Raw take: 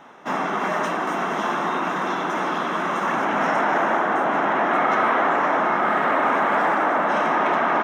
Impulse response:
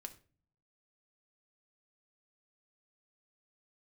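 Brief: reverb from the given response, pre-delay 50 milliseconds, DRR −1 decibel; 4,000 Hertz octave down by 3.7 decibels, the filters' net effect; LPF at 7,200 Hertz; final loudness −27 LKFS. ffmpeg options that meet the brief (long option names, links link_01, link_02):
-filter_complex "[0:a]lowpass=7200,equalizer=frequency=4000:width_type=o:gain=-5,asplit=2[link_01][link_02];[1:a]atrim=start_sample=2205,adelay=50[link_03];[link_02][link_03]afir=irnorm=-1:irlink=0,volume=6dB[link_04];[link_01][link_04]amix=inputs=2:normalize=0,volume=-9dB"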